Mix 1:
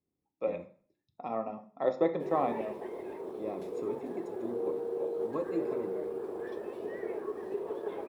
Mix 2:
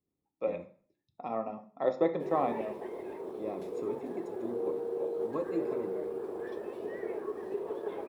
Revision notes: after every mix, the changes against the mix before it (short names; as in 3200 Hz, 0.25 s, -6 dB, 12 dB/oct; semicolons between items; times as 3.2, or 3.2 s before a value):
none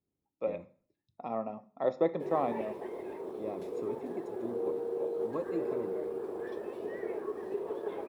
speech: send -6.0 dB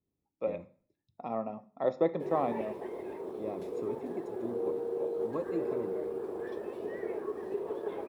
master: add low shelf 170 Hz +3.5 dB